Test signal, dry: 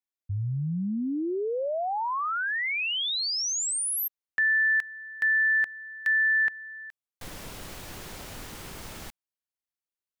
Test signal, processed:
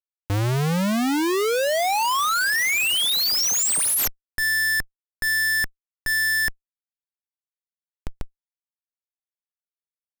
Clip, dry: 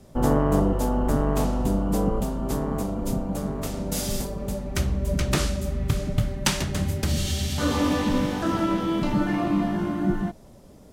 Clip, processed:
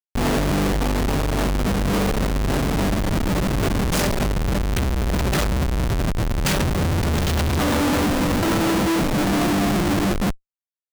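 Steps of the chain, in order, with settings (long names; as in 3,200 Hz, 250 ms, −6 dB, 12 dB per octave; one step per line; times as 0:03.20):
comparator with hysteresis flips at −29 dBFS
brickwall limiter −26 dBFS
level +8 dB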